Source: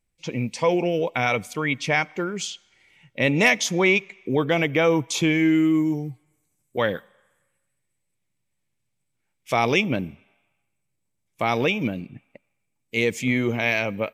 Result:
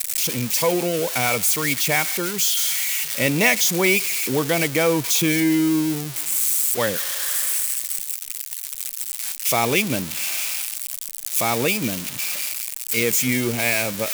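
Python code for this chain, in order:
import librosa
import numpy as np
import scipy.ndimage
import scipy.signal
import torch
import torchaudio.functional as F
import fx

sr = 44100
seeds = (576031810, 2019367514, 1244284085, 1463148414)

y = x + 0.5 * 10.0 ** (-13.5 / 20.0) * np.diff(np.sign(x), prepend=np.sign(x[:1]))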